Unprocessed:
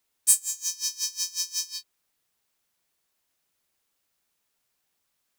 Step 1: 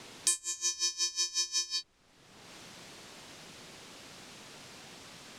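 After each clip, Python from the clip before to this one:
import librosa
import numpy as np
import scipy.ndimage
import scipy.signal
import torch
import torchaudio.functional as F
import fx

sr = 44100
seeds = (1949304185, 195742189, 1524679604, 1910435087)

y = scipy.signal.sosfilt(scipy.signal.butter(2, 7000.0, 'lowpass', fs=sr, output='sos'), x)
y = fx.tilt_eq(y, sr, slope=-3.5)
y = fx.band_squash(y, sr, depth_pct=100)
y = y * 10.0 ** (8.0 / 20.0)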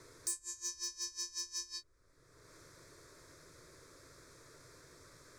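y = fx.low_shelf(x, sr, hz=270.0, db=9.0)
y = np.clip(y, -10.0 ** (-18.5 / 20.0), 10.0 ** (-18.5 / 20.0))
y = fx.fixed_phaser(y, sr, hz=790.0, stages=6)
y = y * 10.0 ** (-6.0 / 20.0)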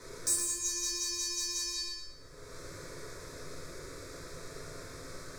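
y = fx.echo_feedback(x, sr, ms=115, feedback_pct=38, wet_db=-5.0)
y = fx.room_shoebox(y, sr, seeds[0], volume_m3=130.0, walls='mixed', distance_m=1.9)
y = y * 10.0 ** (3.5 / 20.0)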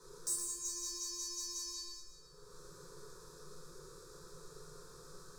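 y = fx.fixed_phaser(x, sr, hz=420.0, stages=8)
y = y + 10.0 ** (-14.5 / 20.0) * np.pad(y, (int(381 * sr / 1000.0), 0))[:len(y)]
y = y * 10.0 ** (-6.5 / 20.0)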